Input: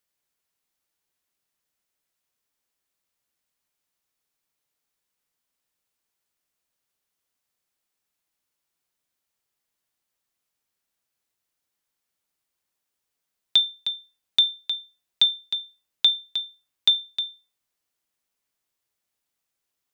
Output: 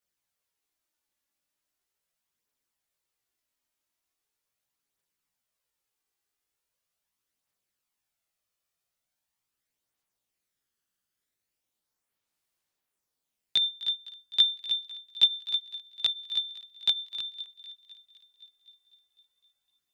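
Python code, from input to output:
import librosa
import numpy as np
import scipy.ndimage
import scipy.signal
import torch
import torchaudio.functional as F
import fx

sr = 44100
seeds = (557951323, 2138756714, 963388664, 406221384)

y = fx.echo_thinned(x, sr, ms=255, feedback_pct=68, hz=720.0, wet_db=-17.5)
y = fx.chorus_voices(y, sr, voices=2, hz=0.2, base_ms=18, depth_ms=1.8, mix_pct=60)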